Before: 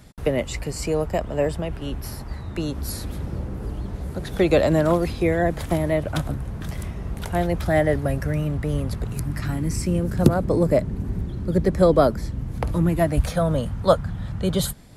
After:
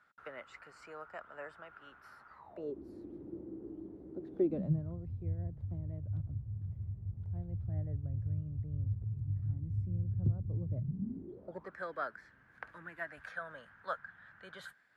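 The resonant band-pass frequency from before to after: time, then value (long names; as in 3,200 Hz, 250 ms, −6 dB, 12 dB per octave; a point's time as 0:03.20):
resonant band-pass, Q 8.6
0:02.30 1,400 Hz
0:02.78 330 Hz
0:04.40 330 Hz
0:04.85 100 Hz
0:10.72 100 Hz
0:11.28 350 Hz
0:11.76 1,600 Hz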